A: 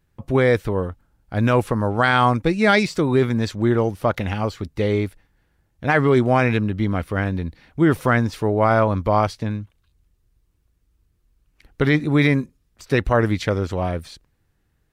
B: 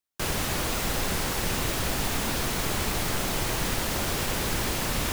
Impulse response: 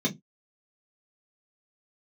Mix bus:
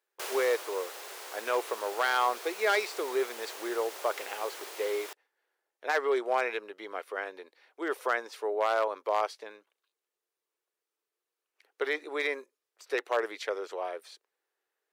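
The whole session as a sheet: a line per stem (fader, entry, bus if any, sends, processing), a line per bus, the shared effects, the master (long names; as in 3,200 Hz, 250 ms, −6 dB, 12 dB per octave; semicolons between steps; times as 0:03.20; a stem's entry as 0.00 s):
−8.5 dB, 0.00 s, no send, wavefolder on the positive side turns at −10 dBFS
−3.0 dB, 0.00 s, no send, automatic ducking −10 dB, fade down 0.70 s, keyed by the first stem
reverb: not used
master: elliptic high-pass filter 400 Hz, stop band 70 dB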